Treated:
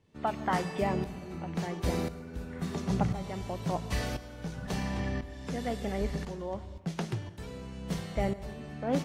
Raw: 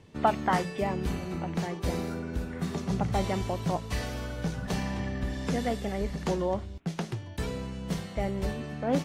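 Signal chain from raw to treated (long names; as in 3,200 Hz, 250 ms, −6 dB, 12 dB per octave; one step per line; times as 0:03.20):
shaped tremolo saw up 0.96 Hz, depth 85%
dense smooth reverb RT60 1.4 s, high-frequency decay 0.6×, pre-delay 90 ms, DRR 15.5 dB
level +1.5 dB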